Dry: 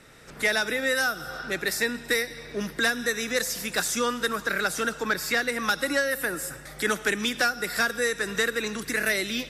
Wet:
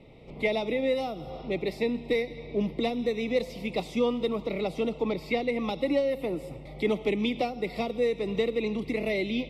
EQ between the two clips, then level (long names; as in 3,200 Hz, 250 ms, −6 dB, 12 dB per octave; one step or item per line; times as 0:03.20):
Butterworth band-reject 1,600 Hz, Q 0.73
high-frequency loss of the air 460 metres
parametric band 2,100 Hz +13 dB 0.44 octaves
+4.0 dB